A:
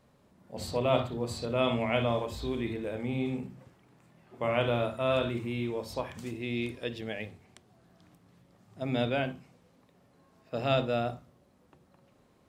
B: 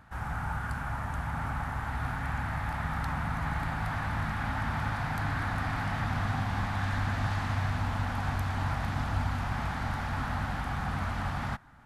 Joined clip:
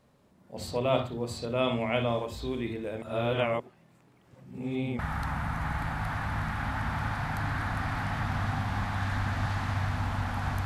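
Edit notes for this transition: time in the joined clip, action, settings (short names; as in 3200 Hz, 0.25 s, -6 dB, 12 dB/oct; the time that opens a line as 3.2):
A
3.02–4.99 reverse
4.99 switch to B from 2.8 s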